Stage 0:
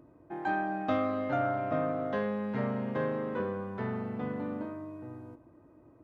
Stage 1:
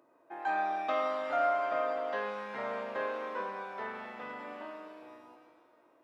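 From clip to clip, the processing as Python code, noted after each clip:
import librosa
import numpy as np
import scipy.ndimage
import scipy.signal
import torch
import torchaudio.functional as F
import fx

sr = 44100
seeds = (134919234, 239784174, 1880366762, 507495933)

y = scipy.signal.sosfilt(scipy.signal.butter(2, 620.0, 'highpass', fs=sr, output='sos'), x)
y = fx.rev_shimmer(y, sr, seeds[0], rt60_s=1.5, semitones=7, shimmer_db=-8, drr_db=3.5)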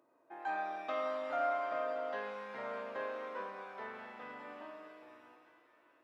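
y = fx.echo_split(x, sr, split_hz=1100.0, low_ms=88, high_ms=625, feedback_pct=52, wet_db=-14.0)
y = F.gain(torch.from_numpy(y), -5.5).numpy()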